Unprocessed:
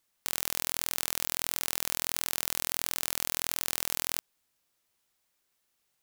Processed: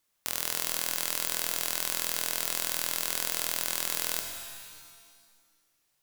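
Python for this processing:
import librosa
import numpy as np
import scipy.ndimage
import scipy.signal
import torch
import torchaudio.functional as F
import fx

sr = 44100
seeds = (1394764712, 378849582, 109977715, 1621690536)

y = fx.rev_shimmer(x, sr, seeds[0], rt60_s=1.6, semitones=7, shimmer_db=-2, drr_db=5.0)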